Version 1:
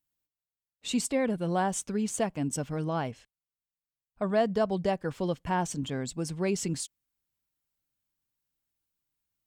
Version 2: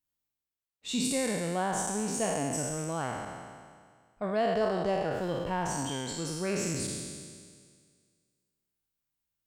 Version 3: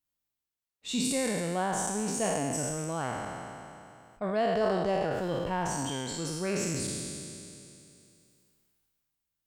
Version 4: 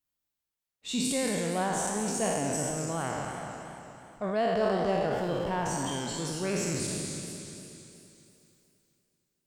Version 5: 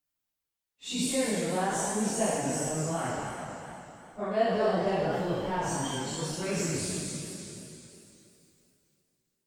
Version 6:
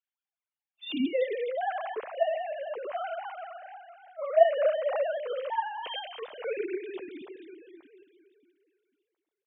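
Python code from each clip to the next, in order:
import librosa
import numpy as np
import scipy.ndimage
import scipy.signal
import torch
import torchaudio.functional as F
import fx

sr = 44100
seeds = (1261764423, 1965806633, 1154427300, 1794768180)

y1 = fx.spec_trails(x, sr, decay_s=1.89)
y1 = y1 * 10.0 ** (-5.0 / 20.0)
y2 = fx.sustainer(y1, sr, db_per_s=22.0)
y3 = fx.echo_warbled(y2, sr, ms=234, feedback_pct=55, rate_hz=2.8, cents=195, wet_db=-9)
y4 = fx.phase_scramble(y3, sr, seeds[0], window_ms=100)
y5 = fx.sine_speech(y4, sr)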